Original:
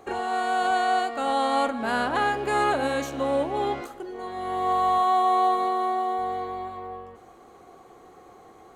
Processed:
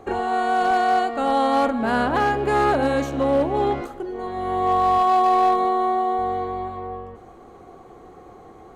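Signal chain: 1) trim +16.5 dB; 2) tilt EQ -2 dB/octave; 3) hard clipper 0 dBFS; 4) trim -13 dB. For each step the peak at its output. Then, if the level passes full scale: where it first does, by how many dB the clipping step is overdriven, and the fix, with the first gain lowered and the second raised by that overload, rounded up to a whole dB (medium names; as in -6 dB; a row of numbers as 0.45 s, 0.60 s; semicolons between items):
+4.0 dBFS, +4.5 dBFS, 0.0 dBFS, -13.0 dBFS; step 1, 4.5 dB; step 1 +11.5 dB, step 4 -8 dB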